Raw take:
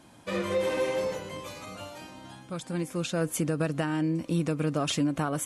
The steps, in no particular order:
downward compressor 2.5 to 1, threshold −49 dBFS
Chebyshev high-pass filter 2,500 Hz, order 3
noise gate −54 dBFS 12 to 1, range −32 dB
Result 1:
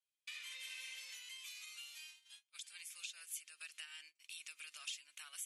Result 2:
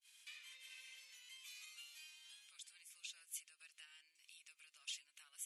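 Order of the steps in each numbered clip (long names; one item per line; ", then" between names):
Chebyshev high-pass filter, then noise gate, then downward compressor
noise gate, then downward compressor, then Chebyshev high-pass filter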